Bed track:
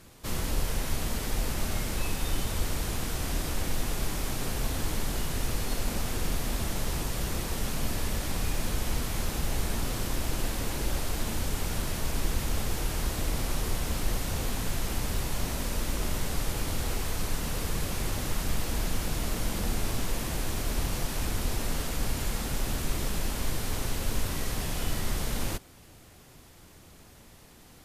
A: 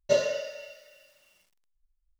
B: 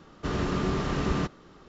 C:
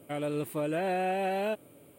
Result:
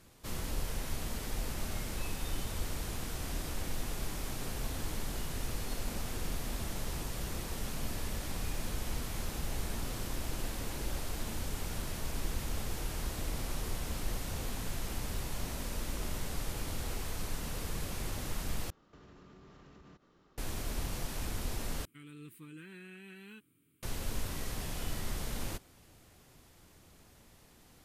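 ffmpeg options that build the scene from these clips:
-filter_complex "[0:a]volume=-7dB[a];[2:a]acompressor=threshold=-40dB:ratio=6:attack=3.2:release=140:knee=1:detection=peak[b];[3:a]asuperstop=centerf=650:order=4:qfactor=0.62[c];[a]asplit=3[d][e][f];[d]atrim=end=18.704[g];[b]atrim=end=1.68,asetpts=PTS-STARTPTS,volume=-14dB[h];[e]atrim=start=20.376:end=21.854[i];[c]atrim=end=1.98,asetpts=PTS-STARTPTS,volume=-13dB[j];[f]atrim=start=23.826[k];[g][h]acrossfade=d=0.004:c1=hsin:c2=hsin[l];[l][i]acrossfade=d=0.004:c1=hsin:c2=hsin[m];[m][j]acrossfade=d=0.004:c1=hsin:c2=hsin[n];[n][k]acrossfade=d=0.004:c1=hsin:c2=hsin"

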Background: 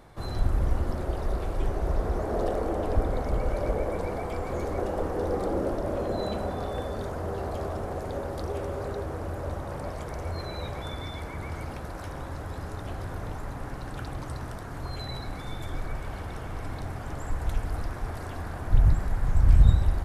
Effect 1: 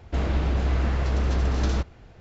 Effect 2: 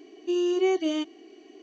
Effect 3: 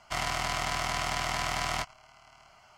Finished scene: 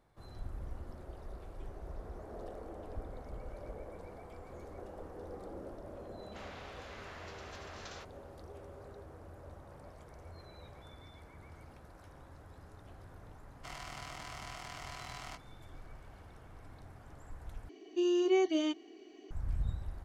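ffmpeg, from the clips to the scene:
-filter_complex "[0:a]volume=-18dB[a];[1:a]highpass=970[b];[a]asplit=2[c][d];[c]atrim=end=17.694[e];[2:a]atrim=end=1.62,asetpts=PTS-STARTPTS,volume=-4.5dB[f];[d]atrim=start=19.306[g];[b]atrim=end=2.2,asetpts=PTS-STARTPTS,volume=-12dB,afade=t=in:d=0.004:c=hsin,afade=t=out:st=2.196:d=0.004:c=hsin,adelay=6220[h];[3:a]atrim=end=2.77,asetpts=PTS-STARTPTS,volume=-15.5dB,afade=t=in:d=0.004:c=hsin,afade=t=out:st=2.766:d=0.004:c=hsin,adelay=13530[i];[e][f]acrossfade=d=0.004:c1=hsin:c2=hsin[j];[j][g]acrossfade=d=0.004:c1=hsin:c2=hsin[k];[k][h][i]amix=inputs=3:normalize=0"

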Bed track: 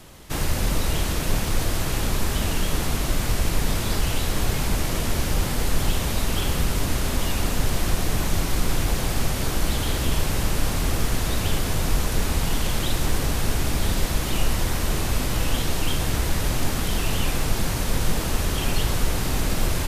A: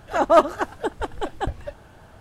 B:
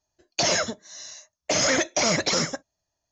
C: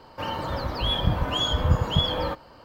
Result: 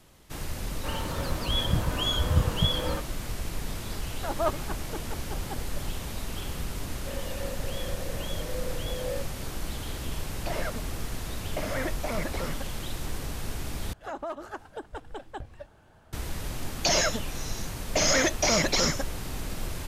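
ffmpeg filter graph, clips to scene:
-filter_complex "[3:a]asplit=2[a][b];[1:a]asplit=2[c][d];[2:a]asplit=2[e][f];[0:a]volume=-11dB[g];[a]equalizer=f=830:t=o:w=0.81:g=-5.5[h];[b]asplit=3[i][j][k];[i]bandpass=f=530:t=q:w=8,volume=0dB[l];[j]bandpass=f=1.84k:t=q:w=8,volume=-6dB[m];[k]bandpass=f=2.48k:t=q:w=8,volume=-9dB[n];[l][m][n]amix=inputs=3:normalize=0[o];[e]lowpass=2.1k[p];[d]acompressor=threshold=-22dB:ratio=6:attack=3.2:release=140:knee=1:detection=peak[q];[g]asplit=2[r][s];[r]atrim=end=13.934[t];[q]atrim=end=2.2,asetpts=PTS-STARTPTS,volume=-9.5dB[u];[s]atrim=start=16.126[v];[h]atrim=end=2.64,asetpts=PTS-STARTPTS,volume=-2.5dB,afade=t=in:d=0.004:c=hsin,afade=t=out:st=2.636:d=0.004:c=hsin,adelay=660[w];[c]atrim=end=2.2,asetpts=PTS-STARTPTS,volume=-13dB,afade=t=in:d=0.004:c=hsin,afade=t=out:st=2.196:d=0.004:c=hsin,adelay=180369S[x];[o]atrim=end=2.64,asetpts=PTS-STARTPTS,afade=t=in:d=0.004:c=hsin,afade=t=out:st=2.636:d=0.004:c=hsin,adelay=6880[y];[p]atrim=end=3.11,asetpts=PTS-STARTPTS,volume=-8dB,afade=t=in:d=0.004:c=hsin,afade=t=out:st=3.106:d=0.004:c=hsin,adelay=10070[z];[f]atrim=end=3.11,asetpts=PTS-STARTPTS,volume=-1.5dB,afade=t=in:d=0.004:c=hsin,afade=t=out:st=3.106:d=0.004:c=hsin,adelay=16460[aa];[t][u]acrossfade=d=0.004:c1=hsin:c2=hsin[ab];[ab][v]acrossfade=d=0.004:c1=hsin:c2=hsin[ac];[ac][w][x][y][z][aa]amix=inputs=6:normalize=0"

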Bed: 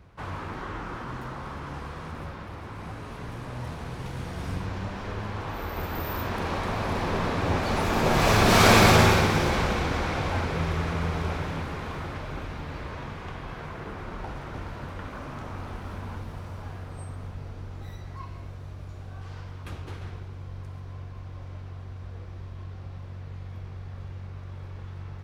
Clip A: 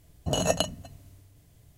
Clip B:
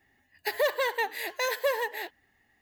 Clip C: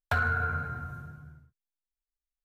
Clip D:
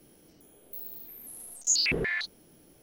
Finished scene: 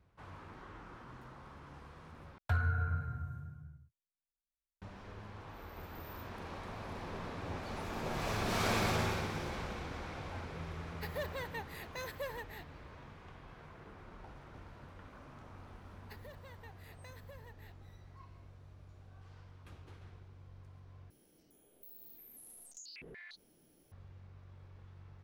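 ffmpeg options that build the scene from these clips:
-filter_complex "[2:a]asplit=2[a][b];[0:a]volume=-16dB[c];[3:a]equalizer=f=93:w=0.8:g=12.5[d];[b]acompressor=threshold=-38dB:ratio=4:attack=16:release=997:knee=1:detection=peak[e];[4:a]acompressor=threshold=-40dB:ratio=6:attack=3.2:release=140:knee=1:detection=peak[f];[c]asplit=3[g][h][i];[g]atrim=end=2.384[j];[d]atrim=end=2.44,asetpts=PTS-STARTPTS,volume=-11.5dB[k];[h]atrim=start=4.816:end=21.104[l];[f]atrim=end=2.82,asetpts=PTS-STARTPTS,volume=-9.5dB[m];[i]atrim=start=23.916[n];[a]atrim=end=2.61,asetpts=PTS-STARTPTS,volume=-14.5dB,afade=t=in:d=0.004:c=hsin,afade=t=out:st=2.606:d=0.004:c=hsin,adelay=10560[o];[e]atrim=end=2.61,asetpts=PTS-STARTPTS,volume=-16dB,afade=t=in:d=0.004:c=hsin,afade=t=out:st=2.606:d=0.004:c=hsin,adelay=15650[p];[j][k]acrossfade=d=0.004:c1=hsin:c2=hsin[q];[q][l]acrossfade=d=0.004:c1=hsin:c2=hsin[r];[r][m]acrossfade=d=0.004:c1=hsin:c2=hsin[s];[s][n]acrossfade=d=0.004:c1=hsin:c2=hsin[t];[t][o][p]amix=inputs=3:normalize=0"

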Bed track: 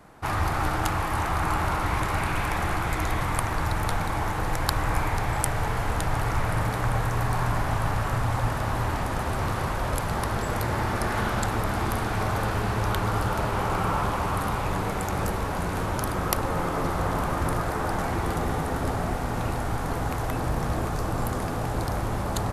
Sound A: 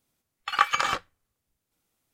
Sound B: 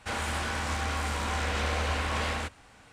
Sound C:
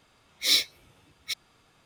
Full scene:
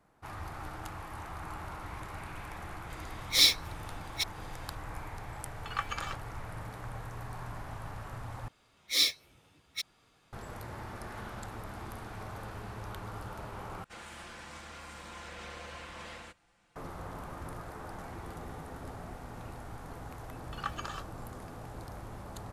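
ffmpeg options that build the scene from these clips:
-filter_complex "[3:a]asplit=2[a][b];[1:a]asplit=2[c][d];[0:a]volume=-16.5dB[e];[a]acompressor=mode=upward:threshold=-42dB:ratio=2.5:attack=3.2:release=140:knee=2.83:detection=peak[f];[2:a]aecho=1:1:5.8:0.62[g];[d]equalizer=f=2.2k:t=o:w=0.23:g=-14[h];[e]asplit=3[i][j][k];[i]atrim=end=8.484[l];[b]atrim=end=1.85,asetpts=PTS-STARTPTS,volume=-4dB[m];[j]atrim=start=10.326:end=13.844[n];[g]atrim=end=2.92,asetpts=PTS-STARTPTS,volume=-15.5dB[o];[k]atrim=start=16.756[p];[f]atrim=end=1.85,asetpts=PTS-STARTPTS,afade=t=in:d=0.004:c=hsin,afade=t=out:st=1.846:d=0.004:c=hsin,adelay=2900[q];[c]atrim=end=2.13,asetpts=PTS-STARTPTS,volume=-13dB,afade=t=in:d=0.004:c=hsin,afade=t=out:st=2.126:d=0.004:c=hsin,adelay=5180[r];[h]atrim=end=2.13,asetpts=PTS-STARTPTS,volume=-15dB,afade=t=in:d=0.004:c=hsin,afade=t=out:st=2.126:d=0.004:c=hsin,adelay=20050[s];[l][m]acrossfade=d=0.004:c1=hsin:c2=hsin[t];[t][n]acrossfade=d=0.004:c1=hsin:c2=hsin[u];[u][o]acrossfade=d=0.004:c1=hsin:c2=hsin[v];[v][p]acrossfade=d=0.004:c1=hsin:c2=hsin[w];[w][q][r][s]amix=inputs=4:normalize=0"

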